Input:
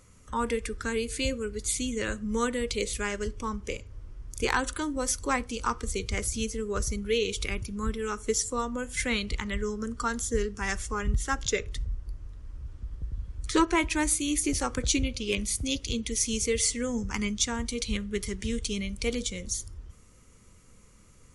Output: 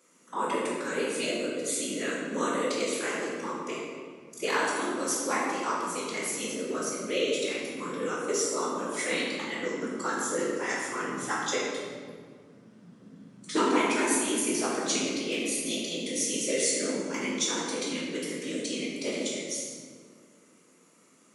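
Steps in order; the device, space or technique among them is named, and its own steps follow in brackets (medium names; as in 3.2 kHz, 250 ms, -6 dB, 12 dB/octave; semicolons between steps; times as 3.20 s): whispering ghost (whisper effect; high-pass 250 Hz 24 dB/octave; reverberation RT60 1.9 s, pre-delay 10 ms, DRR -5 dB); trim -5 dB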